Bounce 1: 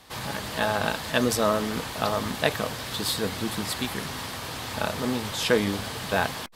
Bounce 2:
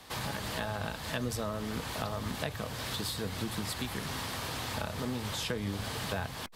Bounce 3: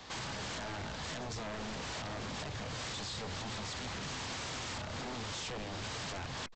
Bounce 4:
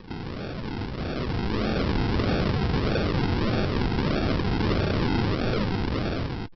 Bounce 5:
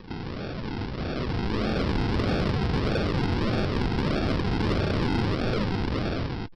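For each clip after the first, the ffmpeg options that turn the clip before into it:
ffmpeg -i in.wav -filter_complex "[0:a]acrossover=split=130[link_01][link_02];[link_02]acompressor=threshold=-34dB:ratio=6[link_03];[link_01][link_03]amix=inputs=2:normalize=0" out.wav
ffmpeg -i in.wav -af "alimiter=level_in=4dB:limit=-24dB:level=0:latency=1:release=46,volume=-4dB,aresample=16000,aeval=exprs='0.0133*(abs(mod(val(0)/0.0133+3,4)-2)-1)':channel_layout=same,aresample=44100,volume=2dB" out.wav
ffmpeg -i in.wav -af "aresample=11025,acrusher=samples=15:mix=1:aa=0.000001:lfo=1:lforange=9:lforate=1.6,aresample=44100,dynaudnorm=framelen=530:gausssize=5:maxgain=9.5dB,volume=7.5dB" out.wav
ffmpeg -i in.wav -af "asoftclip=type=tanh:threshold=-16.5dB" out.wav

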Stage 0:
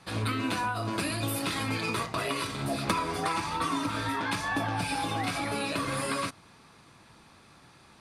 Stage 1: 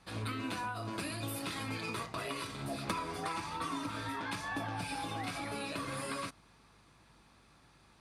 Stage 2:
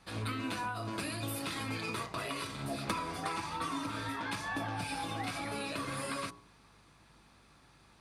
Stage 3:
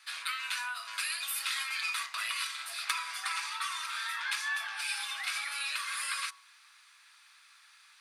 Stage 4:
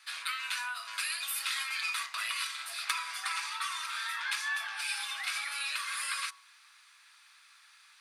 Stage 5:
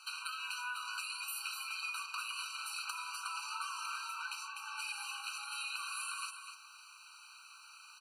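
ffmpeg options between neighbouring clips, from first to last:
ffmpeg -i in.wav -af "aeval=exprs='val(0)+0.000891*(sin(2*PI*50*n/s)+sin(2*PI*2*50*n/s)/2+sin(2*PI*3*50*n/s)/3+sin(2*PI*4*50*n/s)/4+sin(2*PI*5*50*n/s)/5)':channel_layout=same,volume=-8dB" out.wav
ffmpeg -i in.wav -af "bandreject=frequency=58.69:width_type=h:width=4,bandreject=frequency=117.38:width_type=h:width=4,bandreject=frequency=176.07:width_type=h:width=4,bandreject=frequency=234.76:width_type=h:width=4,bandreject=frequency=293.45:width_type=h:width=4,bandreject=frequency=352.14:width_type=h:width=4,bandreject=frequency=410.83:width_type=h:width=4,bandreject=frequency=469.52:width_type=h:width=4,bandreject=frequency=528.21:width_type=h:width=4,bandreject=frequency=586.9:width_type=h:width=4,bandreject=frequency=645.59:width_type=h:width=4,bandreject=frequency=704.28:width_type=h:width=4,bandreject=frequency=762.97:width_type=h:width=4,bandreject=frequency=821.66:width_type=h:width=4,bandreject=frequency=880.35:width_type=h:width=4,bandreject=frequency=939.04:width_type=h:width=4,bandreject=frequency=997.73:width_type=h:width=4,bandreject=frequency=1056.42:width_type=h:width=4,bandreject=frequency=1115.11:width_type=h:width=4,volume=1.5dB" out.wav
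ffmpeg -i in.wav -af "highpass=frequency=1400:width=0.5412,highpass=frequency=1400:width=1.3066,volume=7.5dB" out.wav
ffmpeg -i in.wav -af anull out.wav
ffmpeg -i in.wav -af "acompressor=threshold=-43dB:ratio=6,aecho=1:1:250:0.376,afftfilt=real='re*eq(mod(floor(b*sr/1024/780),2),1)':imag='im*eq(mod(floor(b*sr/1024/780),2),1)':win_size=1024:overlap=0.75,volume=6dB" out.wav

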